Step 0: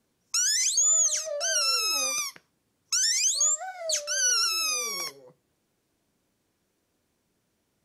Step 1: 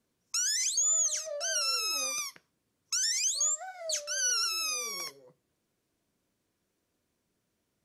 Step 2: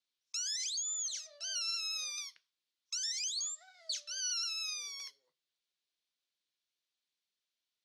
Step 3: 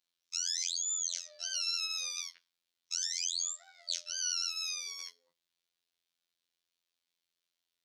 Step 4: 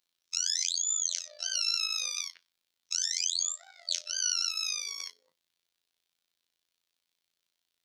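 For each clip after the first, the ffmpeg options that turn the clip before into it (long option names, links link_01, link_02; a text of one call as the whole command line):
ffmpeg -i in.wav -af "bandreject=frequency=830:width=12,volume=-5dB" out.wav
ffmpeg -i in.wav -af "bandpass=frequency=3800:width_type=q:width=2.3:csg=0" out.wav
ffmpeg -i in.wav -af "afftfilt=real='hypot(re,im)*cos(PI*b)':imag='0':win_size=2048:overlap=0.75,volume=5.5dB" out.wav
ffmpeg -i in.wav -af "tremolo=f=54:d=0.75,volume=7.5dB" out.wav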